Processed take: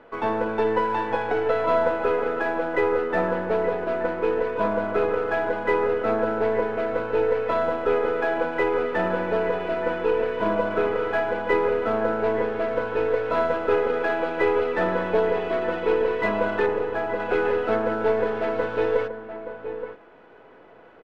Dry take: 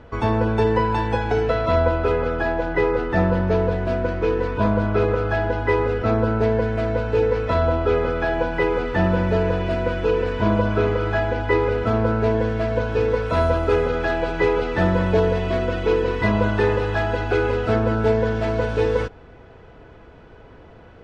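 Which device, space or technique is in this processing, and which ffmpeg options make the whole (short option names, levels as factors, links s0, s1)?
crystal radio: -filter_complex "[0:a]asettb=1/sr,asplit=3[s0][s1][s2];[s0]atrim=end=16.664[s3];[s1]atrim=start=16.66:end=17.2,asetpts=PTS-STARTPTS,afade=t=in:d=0.004:c=qsin,afade=t=out:st=0.536:d=0.004:c=qsin,equalizer=f=3900:w=0.36:g=-8[s4];[s2]atrim=start=17.196[s5];[s3][s4]acrossfade=d=0.004:c1=hsin:c2=qsin[s6];[s6][s5]acrossfade=d=0.004:c1=qsin:c2=hsin,highpass=320,lowpass=2800,aeval=exprs='if(lt(val(0),0),0.708*val(0),val(0))':c=same,asplit=2[s7][s8];[s8]adelay=874.6,volume=0.355,highshelf=f=4000:g=-19.7[s9];[s7][s9]amix=inputs=2:normalize=0"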